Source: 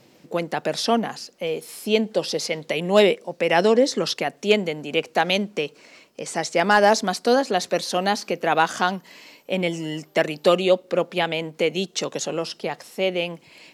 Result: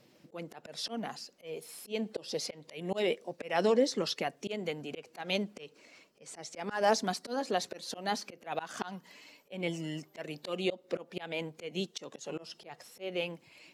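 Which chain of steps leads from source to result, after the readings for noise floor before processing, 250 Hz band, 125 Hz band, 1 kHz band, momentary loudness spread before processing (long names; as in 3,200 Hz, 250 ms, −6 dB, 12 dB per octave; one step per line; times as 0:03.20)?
−55 dBFS, −12.0 dB, −11.5 dB, −14.0 dB, 12 LU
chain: spectral magnitudes quantised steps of 15 dB
volume swells 200 ms
level −8.5 dB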